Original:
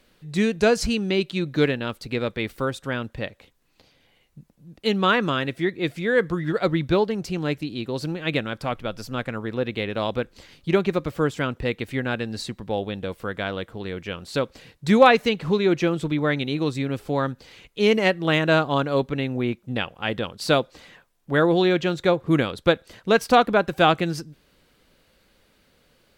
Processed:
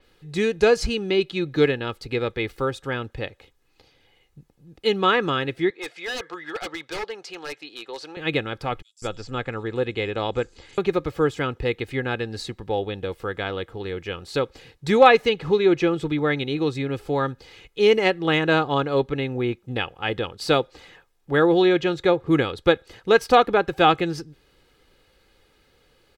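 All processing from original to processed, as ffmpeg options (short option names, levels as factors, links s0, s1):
-filter_complex "[0:a]asettb=1/sr,asplit=3[s0][s1][s2];[s0]atrim=end=5.704[s3];[s1]atrim=start=5.7:end=8.17,asetpts=PTS-STARTPTS,afade=t=in:d=0.004:c=qsin,afade=t=out:st=2.466:d=0.004:c=qsin,highpass=690,lowpass=6800,aeval=exprs='0.0562*(abs(mod(val(0)/0.0562+3,4)-2)-1)':c=same[s4];[s2]atrim=start=8.166[s5];[s3][s4]acrossfade=d=0.004:c1=hsin:c2=qsin[s6];[s6][s5]acrossfade=d=0.004:c1=qsin:c2=hsin,asettb=1/sr,asplit=3[s7][s8][s9];[s7]atrim=end=8.824[s10];[s8]atrim=start=8.82:end=10.78,asetpts=PTS-STARTPTS,afade=t=in:d=0.004:c=qsin,afade=t=out:st=1.956:d=0.004:c=qsin,lowpass=f=9700:w=0.5412,lowpass=f=9700:w=1.3066,equalizer=f=7400:t=o:w=0.27:g=11,acrossover=split=5800[s11][s12];[s11]adelay=200[s13];[s13][s12]amix=inputs=2:normalize=0,atrim=end_sample=86436[s14];[s9]atrim=start=10.776[s15];[s10][s14]acrossfade=d=0.004:c1=hsin:c2=qsin[s16];[s16][s15]acrossfade=d=0.004:c1=qsin:c2=hsin,highshelf=f=8300:g=-5.5,aecho=1:1:2.4:0.48,adynamicequalizer=threshold=0.00794:dfrequency=5800:dqfactor=0.7:tfrequency=5800:tqfactor=0.7:attack=5:release=100:ratio=0.375:range=2.5:mode=cutabove:tftype=highshelf"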